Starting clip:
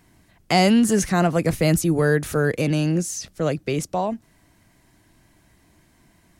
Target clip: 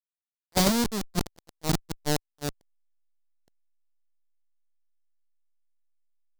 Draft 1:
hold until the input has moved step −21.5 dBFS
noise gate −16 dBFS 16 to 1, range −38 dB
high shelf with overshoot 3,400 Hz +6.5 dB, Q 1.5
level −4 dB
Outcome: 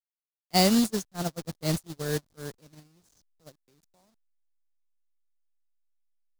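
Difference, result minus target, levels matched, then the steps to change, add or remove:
hold until the input has moved: distortion −14 dB
change: hold until the input has moved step −10 dBFS

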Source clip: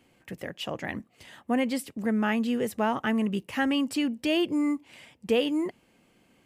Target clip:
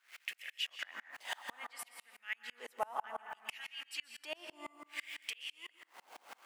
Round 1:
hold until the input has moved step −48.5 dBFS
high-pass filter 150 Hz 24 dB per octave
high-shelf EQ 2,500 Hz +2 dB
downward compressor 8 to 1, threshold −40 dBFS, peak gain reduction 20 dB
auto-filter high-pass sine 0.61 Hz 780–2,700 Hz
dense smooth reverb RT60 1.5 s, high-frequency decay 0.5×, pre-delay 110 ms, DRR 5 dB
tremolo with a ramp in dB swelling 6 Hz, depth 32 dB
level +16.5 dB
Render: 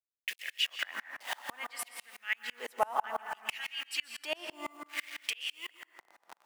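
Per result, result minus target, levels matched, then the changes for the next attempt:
hold until the input has moved: distortion +14 dB; downward compressor: peak gain reduction −7.5 dB
change: hold until the input has moved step −60.5 dBFS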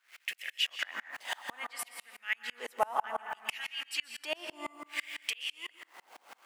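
downward compressor: peak gain reduction −7.5 dB
change: downward compressor 8 to 1, threshold −48.5 dBFS, peak gain reduction 27.5 dB

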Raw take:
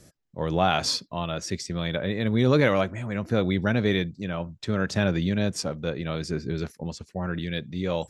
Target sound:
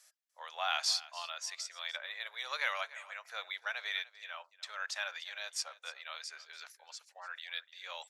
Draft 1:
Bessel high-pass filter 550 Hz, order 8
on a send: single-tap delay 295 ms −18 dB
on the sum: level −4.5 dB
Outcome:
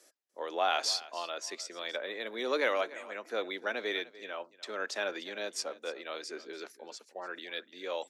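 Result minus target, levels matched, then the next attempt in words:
500 Hz band +13.0 dB
Bessel high-pass filter 1,300 Hz, order 8
on a send: single-tap delay 295 ms −18 dB
on the sum: level −4.5 dB

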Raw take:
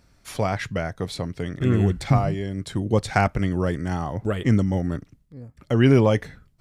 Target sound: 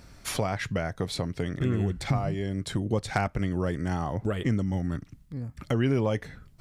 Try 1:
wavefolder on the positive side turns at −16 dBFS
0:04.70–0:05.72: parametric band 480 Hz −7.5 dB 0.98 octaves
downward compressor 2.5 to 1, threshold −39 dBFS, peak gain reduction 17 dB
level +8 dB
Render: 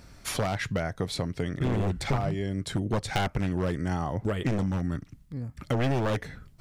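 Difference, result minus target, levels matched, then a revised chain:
wavefolder on the positive side: distortion +34 dB
wavefolder on the positive side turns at −5 dBFS
0:04.70–0:05.72: parametric band 480 Hz −7.5 dB 0.98 octaves
downward compressor 2.5 to 1, threshold −39 dBFS, peak gain reduction 17.5 dB
level +8 dB

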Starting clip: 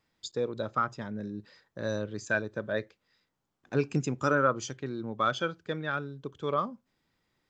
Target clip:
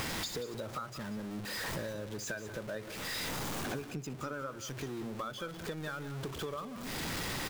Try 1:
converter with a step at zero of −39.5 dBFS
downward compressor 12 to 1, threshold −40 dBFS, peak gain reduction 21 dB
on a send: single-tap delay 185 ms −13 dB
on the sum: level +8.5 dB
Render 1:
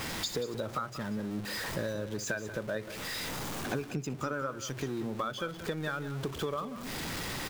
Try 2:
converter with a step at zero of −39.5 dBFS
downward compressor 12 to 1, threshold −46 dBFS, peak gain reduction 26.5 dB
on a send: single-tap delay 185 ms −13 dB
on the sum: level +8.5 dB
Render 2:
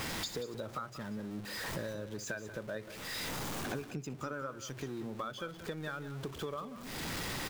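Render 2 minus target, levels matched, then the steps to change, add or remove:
converter with a step at zero: distortion −6 dB
change: converter with a step at zero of −33 dBFS

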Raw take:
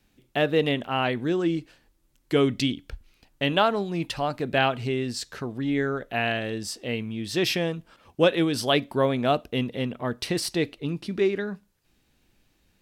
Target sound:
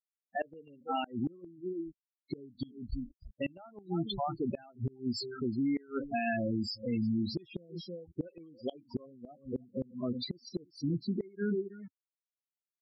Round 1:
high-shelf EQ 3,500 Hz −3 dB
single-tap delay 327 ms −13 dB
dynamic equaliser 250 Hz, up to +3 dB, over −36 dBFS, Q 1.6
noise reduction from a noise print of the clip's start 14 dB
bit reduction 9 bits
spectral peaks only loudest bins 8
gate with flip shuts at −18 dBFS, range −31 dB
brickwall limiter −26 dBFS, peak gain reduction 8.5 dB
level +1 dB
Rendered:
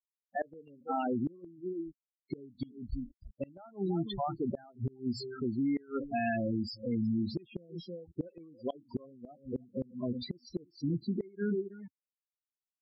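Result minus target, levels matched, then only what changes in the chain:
8,000 Hz band −6.0 dB
change: high-shelf EQ 3,500 Hz +3.5 dB

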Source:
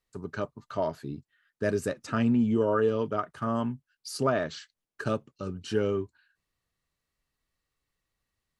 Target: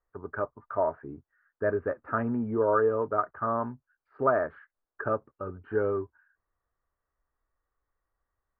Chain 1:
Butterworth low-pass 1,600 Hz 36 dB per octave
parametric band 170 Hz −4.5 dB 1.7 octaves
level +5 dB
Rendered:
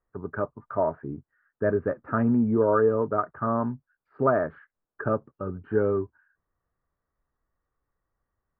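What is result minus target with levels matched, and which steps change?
125 Hz band +4.0 dB
change: parametric band 170 Hz −15.5 dB 1.7 octaves

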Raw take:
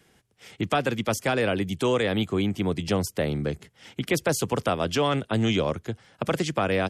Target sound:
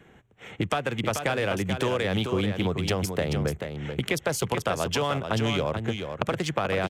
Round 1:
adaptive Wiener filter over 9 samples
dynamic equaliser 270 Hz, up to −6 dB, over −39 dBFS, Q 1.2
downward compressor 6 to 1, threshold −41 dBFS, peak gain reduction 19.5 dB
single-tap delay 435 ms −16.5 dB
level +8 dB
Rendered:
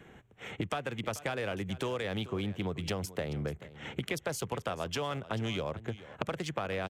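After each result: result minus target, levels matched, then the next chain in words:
downward compressor: peak gain reduction +8 dB; echo-to-direct −9.5 dB
adaptive Wiener filter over 9 samples
dynamic equaliser 270 Hz, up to −6 dB, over −39 dBFS, Q 1.2
downward compressor 6 to 1, threshold −31.5 dBFS, peak gain reduction 11.5 dB
single-tap delay 435 ms −16.5 dB
level +8 dB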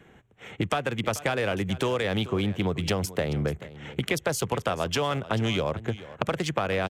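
echo-to-direct −9.5 dB
adaptive Wiener filter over 9 samples
dynamic equaliser 270 Hz, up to −6 dB, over −39 dBFS, Q 1.2
downward compressor 6 to 1, threshold −31.5 dBFS, peak gain reduction 11.5 dB
single-tap delay 435 ms −7 dB
level +8 dB

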